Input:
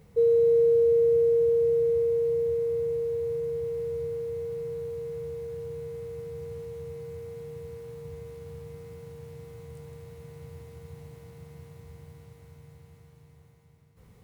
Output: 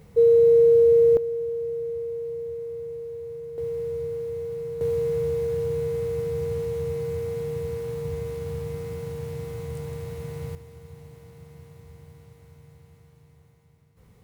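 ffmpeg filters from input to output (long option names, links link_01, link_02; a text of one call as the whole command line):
ffmpeg -i in.wav -af "asetnsamples=nb_out_samples=441:pad=0,asendcmd='1.17 volume volume -6dB;3.58 volume volume 2dB;4.81 volume volume 10.5dB;10.55 volume volume 0dB',volume=5dB" out.wav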